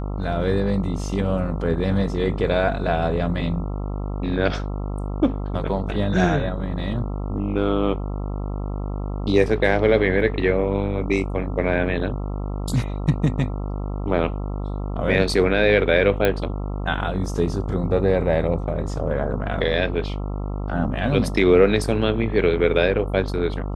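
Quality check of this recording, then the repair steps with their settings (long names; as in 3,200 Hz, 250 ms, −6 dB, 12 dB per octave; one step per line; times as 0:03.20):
mains buzz 50 Hz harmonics 27 −27 dBFS
0:16.25: click −7 dBFS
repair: click removal
hum removal 50 Hz, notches 27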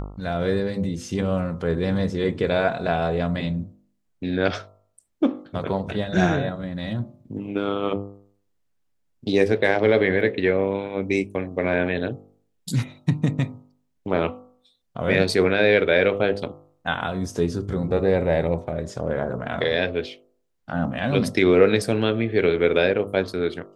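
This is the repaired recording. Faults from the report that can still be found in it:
none of them is left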